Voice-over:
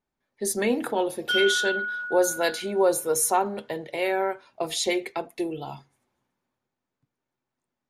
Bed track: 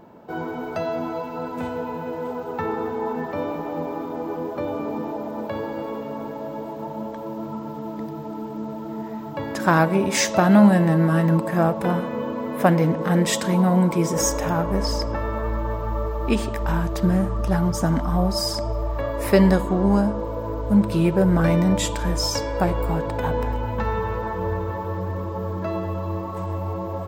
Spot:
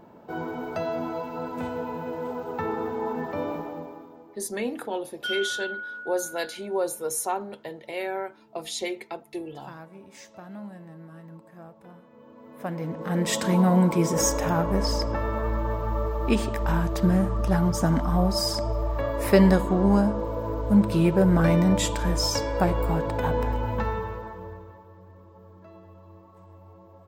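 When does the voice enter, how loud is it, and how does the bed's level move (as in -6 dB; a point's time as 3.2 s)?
3.95 s, -5.5 dB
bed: 3.56 s -3 dB
4.47 s -26.5 dB
12.07 s -26.5 dB
13.44 s -1.5 dB
23.77 s -1.5 dB
24.89 s -22 dB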